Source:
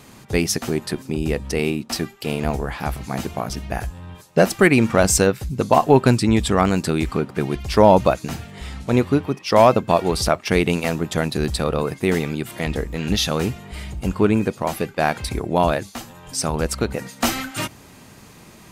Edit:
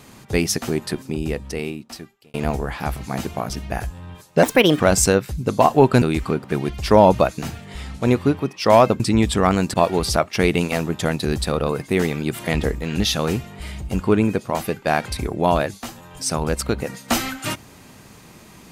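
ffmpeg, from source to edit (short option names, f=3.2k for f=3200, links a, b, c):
-filter_complex "[0:a]asplit=9[a][b][c][d][e][f][g][h][i];[a]atrim=end=2.34,asetpts=PTS-STARTPTS,afade=t=out:st=0.95:d=1.39[j];[b]atrim=start=2.34:end=4.434,asetpts=PTS-STARTPTS,afade=t=in:d=0.004:c=hsin[k];[c]atrim=start=4.43:end=4.92,asetpts=PTS-STARTPTS,asetrate=58653,aresample=44100,atrim=end_sample=16247,asetpts=PTS-STARTPTS[l];[d]atrim=start=4.916:end=6.142[m];[e]atrim=start=6.878:end=9.862[n];[f]atrim=start=6.138:end=6.882[o];[g]atrim=start=9.858:end=12.382[p];[h]atrim=start=12.378:end=12.912,asetpts=PTS-STARTPTS,volume=3dB[q];[i]atrim=start=12.908[r];[j][k]concat=n=2:v=0:a=1[s];[s][l]acrossfade=d=0.004:c1=hsin:c2=hsin[t];[t][m]acrossfade=d=0.004:c1=hsin:c2=hsin[u];[u][n]acrossfade=d=0.004:c1=hsin:c2=hsin[v];[v][o]acrossfade=d=0.004:c1=hsin:c2=hsin[w];[w][p]acrossfade=d=0.004:c1=hsin:c2=hsin[x];[x][q]acrossfade=d=0.004:c1=hsin:c2=hsin[y];[y][r]acrossfade=d=0.004:c1=hsin:c2=hsin"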